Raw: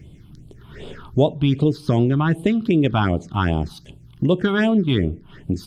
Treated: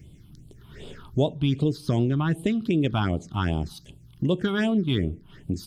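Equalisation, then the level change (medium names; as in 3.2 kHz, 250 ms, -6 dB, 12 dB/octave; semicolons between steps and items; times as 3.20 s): bass shelf 430 Hz +4.5 dB; treble shelf 3.4 kHz +11 dB; -9.0 dB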